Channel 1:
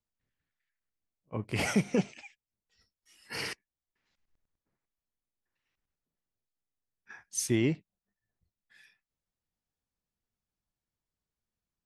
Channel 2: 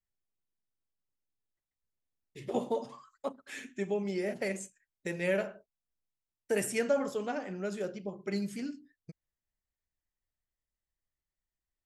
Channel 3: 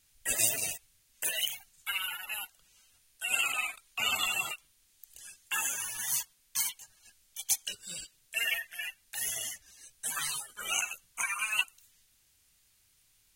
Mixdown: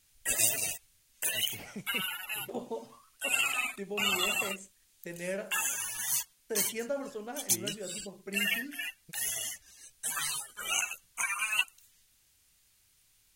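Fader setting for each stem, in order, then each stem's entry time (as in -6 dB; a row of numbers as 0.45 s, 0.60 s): -16.0 dB, -6.0 dB, +0.5 dB; 0.00 s, 0.00 s, 0.00 s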